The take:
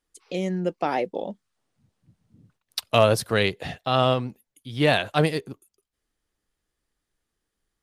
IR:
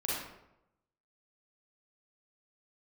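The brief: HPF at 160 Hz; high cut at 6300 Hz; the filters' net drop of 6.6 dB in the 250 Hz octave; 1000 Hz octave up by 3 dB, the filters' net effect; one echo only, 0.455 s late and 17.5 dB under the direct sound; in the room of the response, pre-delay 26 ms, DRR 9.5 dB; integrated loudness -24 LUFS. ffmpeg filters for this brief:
-filter_complex "[0:a]highpass=160,lowpass=6.3k,equalizer=f=250:t=o:g=-8.5,equalizer=f=1k:t=o:g=5,aecho=1:1:455:0.133,asplit=2[a][b];[1:a]atrim=start_sample=2205,adelay=26[c];[b][c]afir=irnorm=-1:irlink=0,volume=-15dB[d];[a][d]amix=inputs=2:normalize=0,volume=-0.5dB"

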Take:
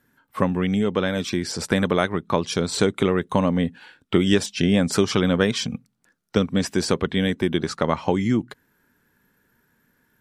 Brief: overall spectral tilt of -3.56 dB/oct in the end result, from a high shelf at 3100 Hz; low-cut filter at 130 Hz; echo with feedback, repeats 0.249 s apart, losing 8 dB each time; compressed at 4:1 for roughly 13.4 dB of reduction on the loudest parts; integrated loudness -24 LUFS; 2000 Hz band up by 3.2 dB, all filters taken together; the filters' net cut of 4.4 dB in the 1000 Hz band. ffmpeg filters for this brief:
-af "highpass=130,equalizer=f=1k:t=o:g=-8,equalizer=f=2k:t=o:g=4,highshelf=f=3.1k:g=7.5,acompressor=threshold=-31dB:ratio=4,aecho=1:1:249|498|747|996|1245:0.398|0.159|0.0637|0.0255|0.0102,volume=9dB"

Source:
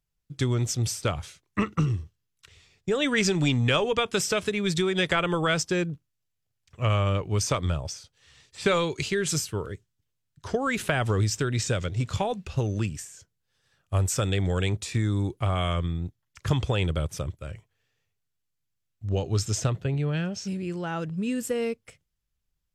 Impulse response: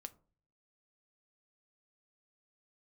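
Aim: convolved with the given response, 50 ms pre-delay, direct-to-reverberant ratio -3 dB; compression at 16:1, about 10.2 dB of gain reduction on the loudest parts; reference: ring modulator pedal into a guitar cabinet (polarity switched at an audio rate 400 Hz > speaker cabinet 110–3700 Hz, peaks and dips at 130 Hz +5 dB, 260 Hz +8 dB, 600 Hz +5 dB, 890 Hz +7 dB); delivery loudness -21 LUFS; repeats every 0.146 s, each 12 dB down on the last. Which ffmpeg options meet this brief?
-filter_complex "[0:a]acompressor=threshold=-30dB:ratio=16,aecho=1:1:146|292|438:0.251|0.0628|0.0157,asplit=2[a][b];[1:a]atrim=start_sample=2205,adelay=50[c];[b][c]afir=irnorm=-1:irlink=0,volume=8.5dB[d];[a][d]amix=inputs=2:normalize=0,aeval=exprs='val(0)*sgn(sin(2*PI*400*n/s))':c=same,highpass=110,equalizer=f=130:t=q:w=4:g=5,equalizer=f=260:t=q:w=4:g=8,equalizer=f=600:t=q:w=4:g=5,equalizer=f=890:t=q:w=4:g=7,lowpass=f=3.7k:w=0.5412,lowpass=f=3.7k:w=1.3066,volume=6dB"

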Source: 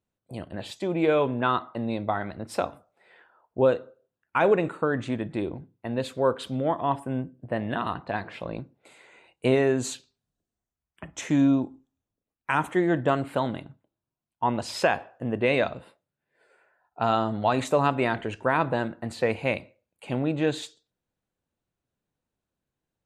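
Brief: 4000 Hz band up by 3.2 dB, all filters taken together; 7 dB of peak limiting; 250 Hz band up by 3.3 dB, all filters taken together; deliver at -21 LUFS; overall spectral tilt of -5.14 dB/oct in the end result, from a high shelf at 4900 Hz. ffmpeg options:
-af "equalizer=f=250:t=o:g=4,equalizer=f=4k:t=o:g=6.5,highshelf=f=4.9k:g=-6,volume=7dB,alimiter=limit=-8dB:level=0:latency=1"

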